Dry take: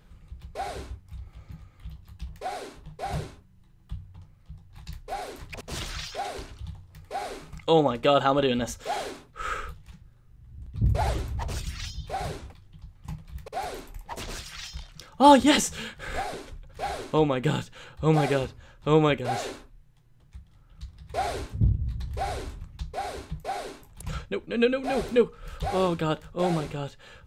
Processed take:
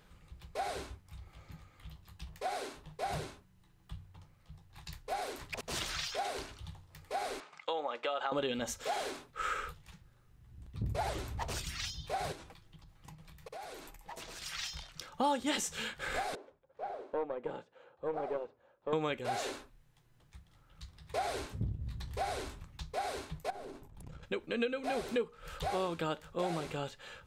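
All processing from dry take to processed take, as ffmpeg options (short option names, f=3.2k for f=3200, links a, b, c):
-filter_complex "[0:a]asettb=1/sr,asplit=3[a][b][c];[a]atrim=end=7.404[d];[b]atrim=start=7.4:end=8.32,asetpts=PTS-STARTPTS,afade=t=in:d=0.004:c=qsin,afade=t=out:st=0.916:d=0.004:c=qsin,aemphasis=mode=reproduction:type=50fm,acompressor=threshold=-24dB:ratio=2.5:attack=3.2:release=140:knee=1:detection=peak,highpass=590,lowpass=7.8k[e];[c]atrim=start=8.316[f];[d][e]acrossfade=d=0.004:c1=hsin:c2=qsin[g];[g][f]acrossfade=d=0.004:c1=qsin:c2=hsin,asettb=1/sr,asplit=3[h][i][j];[h]atrim=end=12.324[k];[i]atrim=start=12.32:end=14.42,asetpts=PTS-STARTPTS,afade=t=in:d=0.004:c=qsin,afade=t=out:st=2.096:d=0.004:c=qsin,acompressor=threshold=-41dB:ratio=10:attack=3.2:release=140:knee=1:detection=peak,aecho=1:1:6.2:0.31,atrim=end_sample=92610[l];[j]atrim=start=14.416[m];[k][l]acrossfade=d=0.004:c1=hsin:c2=qsin[n];[n][m]acrossfade=d=0.004:c1=qsin:c2=hsin,asettb=1/sr,asplit=3[o][p][q];[o]atrim=end=16.354[r];[p]atrim=start=16.35:end=18.93,asetpts=PTS-STARTPTS,afade=t=in:d=0.004:c=qsin,afade=t=out:st=2.576:d=0.004:c=qsin,bandpass=f=540:t=q:w=1.6,aeval=exprs='(tanh(7.94*val(0)+0.7)-tanh(0.7))/7.94':c=same[s];[q]atrim=start=18.926[t];[r][s]acrossfade=d=0.004:c1=hsin:c2=qsin[u];[u][t]acrossfade=d=0.004:c1=qsin:c2=hsin,asettb=1/sr,asplit=3[v][w][x];[v]atrim=end=23.504[y];[w]atrim=start=23.5:end=24.23,asetpts=PTS-STARTPTS,afade=t=in:d=0.004:c=qsin,afade=t=out:st=0.726:d=0.004:c=qsin,aeval=exprs='if(lt(val(0),0),0.447*val(0),val(0))':c=same,tiltshelf=f=720:g=9,acompressor=threshold=-37dB:ratio=6:attack=3.2:release=140:knee=1:detection=peak[z];[x]atrim=start=24.226[aa];[y][z]acrossfade=d=0.004:c1=hsin:c2=qsin[ab];[ab][aa]acrossfade=d=0.004:c1=qsin:c2=hsin,lowshelf=f=220:g=-10.5,acompressor=threshold=-33dB:ratio=3"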